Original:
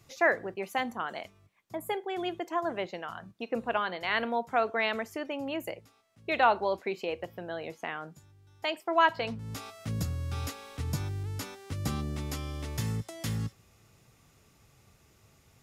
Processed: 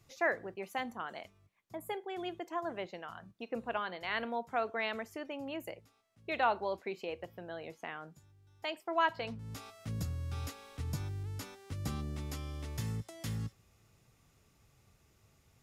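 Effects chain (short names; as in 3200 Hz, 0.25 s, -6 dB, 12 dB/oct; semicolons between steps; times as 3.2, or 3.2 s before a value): low shelf 72 Hz +5.5 dB; gain -6.5 dB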